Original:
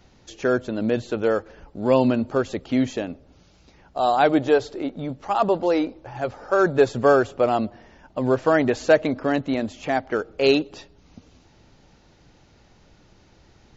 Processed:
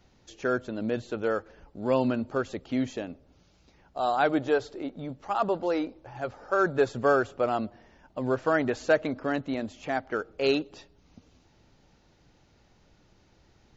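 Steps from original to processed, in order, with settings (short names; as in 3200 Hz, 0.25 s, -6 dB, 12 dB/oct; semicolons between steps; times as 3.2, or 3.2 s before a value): dynamic EQ 1400 Hz, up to +5 dB, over -38 dBFS, Q 2.9; gain -7 dB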